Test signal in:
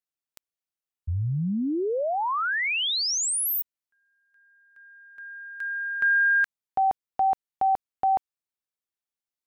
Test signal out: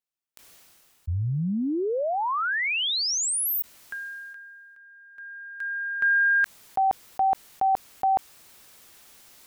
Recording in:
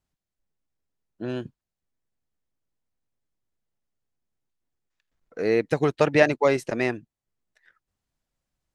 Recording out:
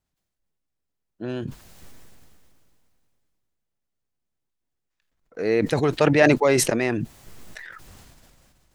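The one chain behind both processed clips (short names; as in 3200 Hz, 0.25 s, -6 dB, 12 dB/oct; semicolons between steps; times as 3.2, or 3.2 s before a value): sustainer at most 22 dB/s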